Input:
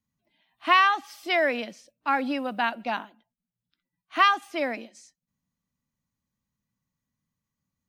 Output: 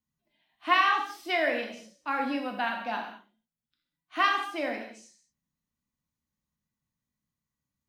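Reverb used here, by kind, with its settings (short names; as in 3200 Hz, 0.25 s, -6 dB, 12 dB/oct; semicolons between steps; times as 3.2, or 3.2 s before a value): non-linear reverb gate 0.25 s falling, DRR 1 dB; gain -5.5 dB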